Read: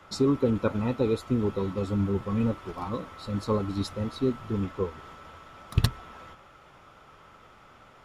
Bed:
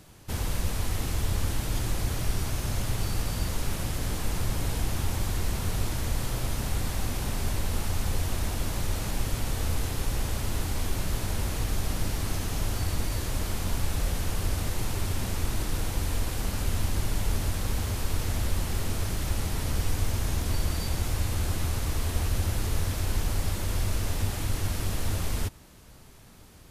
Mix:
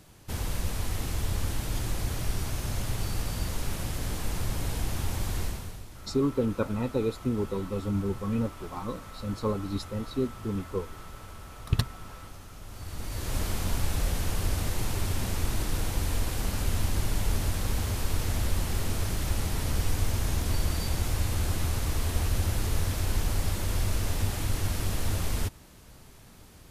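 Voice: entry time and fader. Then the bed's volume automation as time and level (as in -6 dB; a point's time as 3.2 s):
5.95 s, -2.5 dB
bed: 5.43 s -2 dB
5.86 s -16.5 dB
12.62 s -16.5 dB
13.36 s 0 dB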